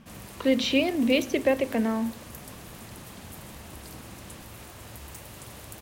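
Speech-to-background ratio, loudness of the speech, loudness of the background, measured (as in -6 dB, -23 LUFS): 18.0 dB, -25.5 LUFS, -43.5 LUFS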